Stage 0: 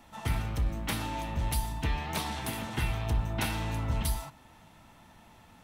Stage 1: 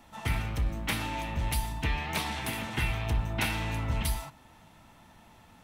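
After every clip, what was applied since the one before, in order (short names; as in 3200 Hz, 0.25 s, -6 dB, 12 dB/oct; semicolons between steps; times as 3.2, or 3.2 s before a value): dynamic EQ 2300 Hz, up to +6 dB, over -51 dBFS, Q 1.5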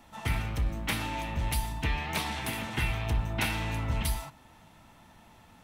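nothing audible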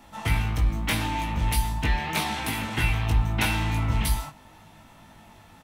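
doubler 19 ms -4 dB; gain +3.5 dB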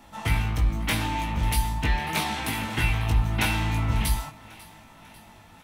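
thinning echo 0.545 s, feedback 56%, high-pass 350 Hz, level -19.5 dB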